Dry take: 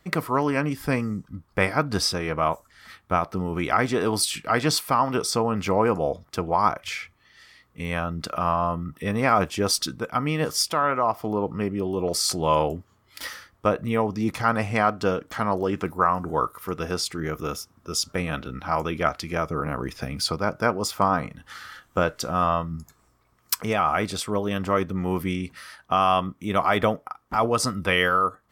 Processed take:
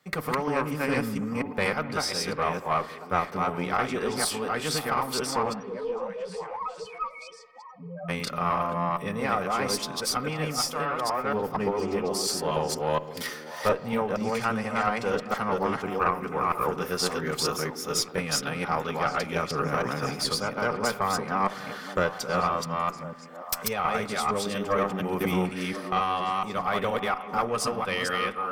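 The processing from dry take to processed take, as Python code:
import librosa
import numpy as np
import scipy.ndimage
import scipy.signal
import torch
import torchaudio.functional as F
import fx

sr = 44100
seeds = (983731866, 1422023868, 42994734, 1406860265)

y = fx.reverse_delay(x, sr, ms=236, wet_db=-0.5)
y = scipy.signal.sosfilt(scipy.signal.butter(4, 110.0, 'highpass', fs=sr, output='sos'), y)
y = fx.low_shelf(y, sr, hz=230.0, db=-6.5)
y = fx.rider(y, sr, range_db=5, speed_s=0.5)
y = fx.spec_topn(y, sr, count=2, at=(5.52, 8.08), fade=0.02)
y = fx.notch_comb(y, sr, f0_hz=330.0)
y = fx.tube_stage(y, sr, drive_db=10.0, bias=0.65)
y = fx.echo_stepped(y, sr, ms=521, hz=300.0, octaves=1.4, feedback_pct=70, wet_db=-8.0)
y = fx.rev_spring(y, sr, rt60_s=2.0, pass_ms=(52,), chirp_ms=75, drr_db=16.5)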